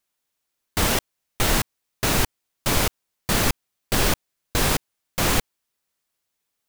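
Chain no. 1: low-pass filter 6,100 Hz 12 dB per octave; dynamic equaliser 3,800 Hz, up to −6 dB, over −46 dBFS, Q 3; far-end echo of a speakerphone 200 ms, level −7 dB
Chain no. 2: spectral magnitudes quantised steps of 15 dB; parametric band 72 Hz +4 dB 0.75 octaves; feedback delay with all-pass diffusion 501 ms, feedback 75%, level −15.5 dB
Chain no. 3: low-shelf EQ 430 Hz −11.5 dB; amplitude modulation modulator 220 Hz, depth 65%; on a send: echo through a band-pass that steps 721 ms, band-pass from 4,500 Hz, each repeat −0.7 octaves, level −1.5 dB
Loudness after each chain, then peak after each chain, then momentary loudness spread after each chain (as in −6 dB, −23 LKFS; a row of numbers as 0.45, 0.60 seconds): −26.0, −24.0, −28.0 LKFS; −6.5, −4.5, −11.0 dBFS; 9, 14, 9 LU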